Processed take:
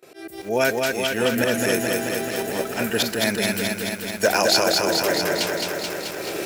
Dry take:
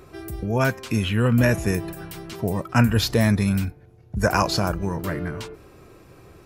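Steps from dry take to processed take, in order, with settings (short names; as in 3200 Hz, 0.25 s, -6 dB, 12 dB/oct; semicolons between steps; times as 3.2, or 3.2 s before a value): recorder AGC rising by 14 dB/s; gate with hold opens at -37 dBFS; HPF 450 Hz 12 dB/oct; bell 1100 Hz -14.5 dB 0.64 oct; auto swell 0.122 s; in parallel at -10.5 dB: wrapped overs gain 14.5 dB; on the sum: lo-fi delay 0.216 s, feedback 80%, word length 8-bit, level -3 dB; gain +4.5 dB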